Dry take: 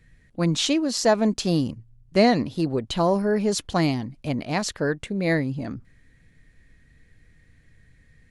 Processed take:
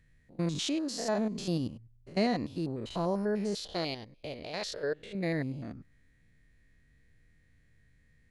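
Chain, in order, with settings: stepped spectrum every 0.1 s; 3.55–5.15 ten-band EQ 125 Hz -8 dB, 250 Hz -11 dB, 500 Hz +9 dB, 1000 Hz -5 dB, 4000 Hz +9 dB, 8000 Hz -6 dB; gain -8 dB

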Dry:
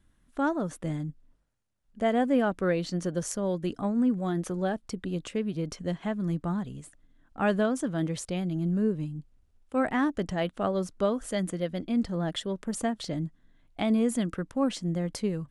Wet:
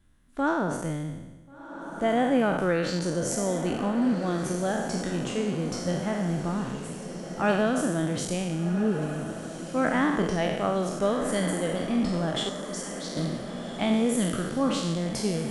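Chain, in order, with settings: spectral trails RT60 1.11 s; 12.49–13.17 band-pass 6100 Hz, Q 1.8; diffused feedback echo 1.473 s, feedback 56%, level -10 dB

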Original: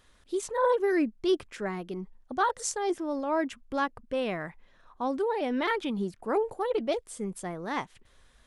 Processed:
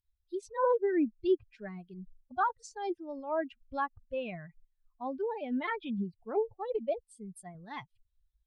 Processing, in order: per-bin expansion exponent 2; 7.04–7.55 low shelf 210 Hz -8.5 dB; treble ducked by the level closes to 1600 Hz, closed at -28 dBFS

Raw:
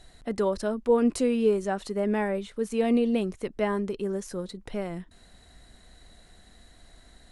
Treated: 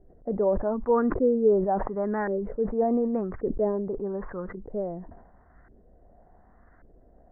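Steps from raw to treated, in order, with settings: LFO low-pass saw up 0.88 Hz 400–1500 Hz; elliptic low-pass 1900 Hz, stop band 60 dB; sustainer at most 59 dB/s; gain -2.5 dB

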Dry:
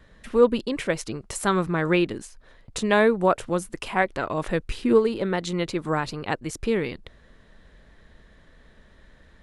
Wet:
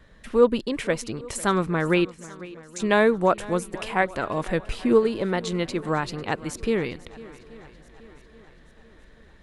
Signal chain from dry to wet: 2.05–2.8 band-pass 6600 Hz, Q 3.3; on a send: swung echo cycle 0.83 s, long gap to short 1.5:1, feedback 44%, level -19.5 dB

